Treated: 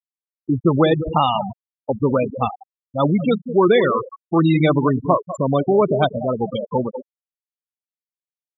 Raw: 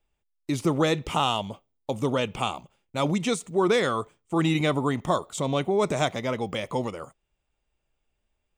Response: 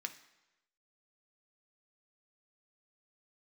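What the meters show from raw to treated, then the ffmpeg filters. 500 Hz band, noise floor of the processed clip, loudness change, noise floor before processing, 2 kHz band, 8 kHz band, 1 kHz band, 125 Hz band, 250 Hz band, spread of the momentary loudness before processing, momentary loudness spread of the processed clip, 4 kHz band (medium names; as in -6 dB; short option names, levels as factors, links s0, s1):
+8.0 dB, under -85 dBFS, +7.5 dB, -78 dBFS, +2.5 dB, under -15 dB, +7.0 dB, +8.0 dB, +8.0 dB, 12 LU, 11 LU, -0.5 dB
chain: -filter_complex "[0:a]asplit=2[s0][s1];[s1]adelay=198.3,volume=0.316,highshelf=f=4000:g=-4.46[s2];[s0][s2]amix=inputs=2:normalize=0,afftfilt=real='re*gte(hypot(re,im),0.126)':imag='im*gte(hypot(re,im),0.126)':win_size=1024:overlap=0.75,volume=2.51"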